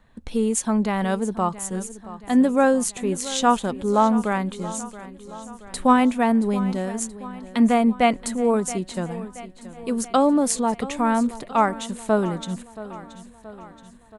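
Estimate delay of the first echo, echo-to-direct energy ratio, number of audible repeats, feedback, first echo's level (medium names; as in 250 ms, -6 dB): 676 ms, -14.5 dB, 4, 57%, -16.0 dB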